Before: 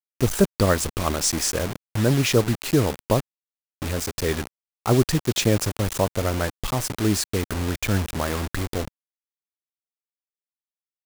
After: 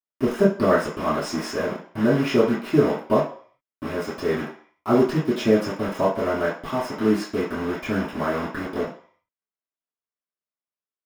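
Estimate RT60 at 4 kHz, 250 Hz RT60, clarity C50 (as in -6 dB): 0.55 s, 0.40 s, 6.0 dB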